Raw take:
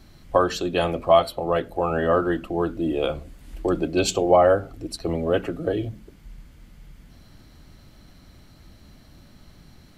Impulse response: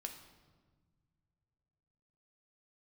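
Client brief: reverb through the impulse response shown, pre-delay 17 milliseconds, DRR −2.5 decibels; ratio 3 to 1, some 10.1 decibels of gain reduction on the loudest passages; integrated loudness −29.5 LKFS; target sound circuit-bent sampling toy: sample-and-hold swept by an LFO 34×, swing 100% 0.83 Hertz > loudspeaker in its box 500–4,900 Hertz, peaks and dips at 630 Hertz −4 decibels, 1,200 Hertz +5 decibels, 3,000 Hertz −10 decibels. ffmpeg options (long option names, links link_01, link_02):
-filter_complex "[0:a]acompressor=threshold=-25dB:ratio=3,asplit=2[link_01][link_02];[1:a]atrim=start_sample=2205,adelay=17[link_03];[link_02][link_03]afir=irnorm=-1:irlink=0,volume=5.5dB[link_04];[link_01][link_04]amix=inputs=2:normalize=0,acrusher=samples=34:mix=1:aa=0.000001:lfo=1:lforange=34:lforate=0.83,highpass=500,equalizer=frequency=630:width_type=q:width=4:gain=-4,equalizer=frequency=1200:width_type=q:width=4:gain=5,equalizer=frequency=3000:width_type=q:width=4:gain=-10,lowpass=frequency=4900:width=0.5412,lowpass=frequency=4900:width=1.3066,volume=-1.5dB"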